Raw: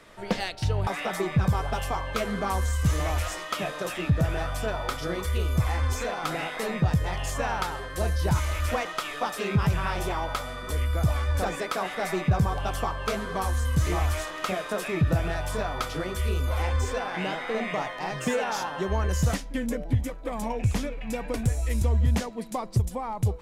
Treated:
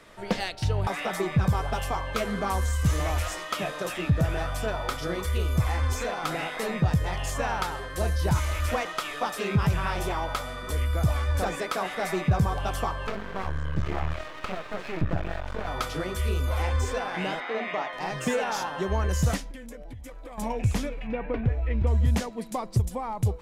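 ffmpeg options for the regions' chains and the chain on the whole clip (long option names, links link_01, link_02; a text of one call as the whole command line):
ffmpeg -i in.wav -filter_complex "[0:a]asettb=1/sr,asplit=3[link_01][link_02][link_03];[link_01]atrim=end=13.074[link_04];[link_02]atrim=start=13.07:end=15.67,asetpts=PTS-STARTPTS,afade=type=in:duration=0.004:curve=qsin,afade=type=out:start_time=2.596:duration=0.004:curve=qsin,lowpass=2900,aeval=exprs='max(val(0),0)':channel_layout=same[link_05];[link_03]atrim=start=15.666[link_06];[link_04][link_05]acrossfade=duration=0.004:curve1=hsin:curve2=qsin[link_07];[link_07][link_06]acrossfade=duration=0.004:curve1=qsin:curve2=hsin,asettb=1/sr,asplit=3[link_08][link_09][link_10];[link_08]atrim=end=17.404[link_11];[link_09]atrim=start=17.4:end=17.93,asetpts=PTS-STARTPTS,afade=type=in:duration=0.004:curve=qsin,afade=type=out:start_time=0.526:duration=0.004:curve=qsin,highpass=290,lowpass=4300,bandreject=frequency=500:width=12[link_12];[link_10]atrim=start=17.926[link_13];[link_11][link_12]acrossfade=duration=0.004:curve1=hsin:curve2=qsin[link_14];[link_14][link_13]acrossfade=duration=0.004:curve1=qsin:curve2=hsin,asettb=1/sr,asplit=3[link_15][link_16][link_17];[link_15]atrim=end=19.514[link_18];[link_16]atrim=start=19.51:end=20.38,asetpts=PTS-STARTPTS,afade=type=in:duration=0.004:curve=qsin,afade=type=out:start_time=0.866:duration=0.004:curve=qsin,equalizer=frequency=180:width_type=o:width=1.7:gain=-8,acompressor=threshold=-37dB:ratio=12:attack=3.2:release=140:knee=1:detection=peak[link_19];[link_17]atrim=start=20.376[link_20];[link_18][link_19]acrossfade=duration=0.004:curve1=hsin:curve2=qsin[link_21];[link_21][link_20]acrossfade=duration=0.004:curve1=qsin:curve2=hsin,asettb=1/sr,asplit=3[link_22][link_23][link_24];[link_22]atrim=end=21.074[link_25];[link_23]atrim=start=21.07:end=21.87,asetpts=PTS-STARTPTS,afade=type=in:duration=0.004:curve=qsin,afade=type=out:start_time=0.796:duration=0.004:curve=qsin,lowpass=frequency=2700:width=0.5412,lowpass=frequency=2700:width=1.3066,equalizer=frequency=430:width_type=o:width=0.29:gain=3.5[link_26];[link_24]atrim=start=21.866[link_27];[link_25][link_26]acrossfade=duration=0.004:curve1=hsin:curve2=qsin[link_28];[link_28][link_27]acrossfade=duration=0.004:curve1=qsin:curve2=hsin" out.wav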